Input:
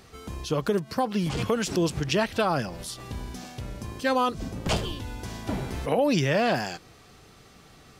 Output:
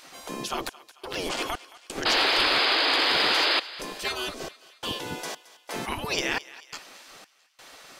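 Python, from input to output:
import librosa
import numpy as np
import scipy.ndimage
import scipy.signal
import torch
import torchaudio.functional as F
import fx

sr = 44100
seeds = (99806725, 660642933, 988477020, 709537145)

p1 = fx.octave_divider(x, sr, octaves=1, level_db=3.0)
p2 = fx.spec_gate(p1, sr, threshold_db=-15, keep='weak')
p3 = fx.step_gate(p2, sr, bpm=87, pattern='xxxx..xxx..', floor_db=-60.0, edge_ms=4.5)
p4 = fx.rider(p3, sr, range_db=4, speed_s=0.5)
p5 = p3 + (p4 * librosa.db_to_amplitude(0.0))
p6 = fx.spec_paint(p5, sr, seeds[0], shape='noise', start_s=2.05, length_s=1.55, low_hz=260.0, high_hz=5100.0, level_db=-22.0)
p7 = 10.0 ** (-12.5 / 20.0) * np.tanh(p6 / 10.0 ** (-12.5 / 20.0))
y = p7 + fx.echo_thinned(p7, sr, ms=221, feedback_pct=55, hz=790.0, wet_db=-17, dry=0)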